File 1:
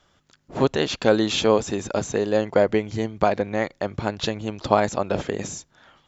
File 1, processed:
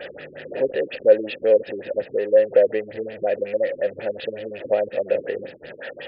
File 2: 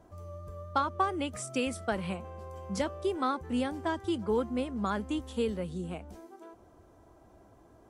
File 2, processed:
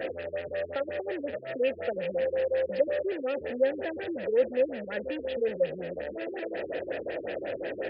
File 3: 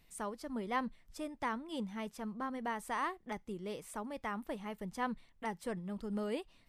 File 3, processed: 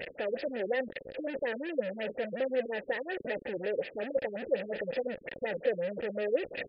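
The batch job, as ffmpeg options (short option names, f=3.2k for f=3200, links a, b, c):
-filter_complex "[0:a]aeval=exprs='val(0)+0.5*0.0944*sgn(val(0))':c=same,asplit=3[a][b][c];[a]bandpass=f=530:t=q:w=8,volume=0dB[d];[b]bandpass=f=1.84k:t=q:w=8,volume=-6dB[e];[c]bandpass=f=2.48k:t=q:w=8,volume=-9dB[f];[d][e][f]amix=inputs=3:normalize=0,afftfilt=real='re*lt(b*sr/1024,410*pow(5300/410,0.5+0.5*sin(2*PI*5.5*pts/sr)))':imag='im*lt(b*sr/1024,410*pow(5300/410,0.5+0.5*sin(2*PI*5.5*pts/sr)))':win_size=1024:overlap=0.75,volume=6dB"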